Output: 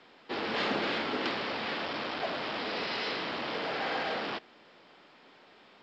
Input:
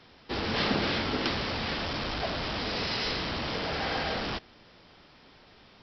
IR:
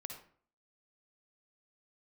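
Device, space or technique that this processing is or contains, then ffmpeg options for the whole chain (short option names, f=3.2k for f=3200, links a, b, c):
telephone: -af "highpass=270,lowpass=3.5k,asoftclip=type=tanh:threshold=-21dB" -ar 16000 -c:a pcm_mulaw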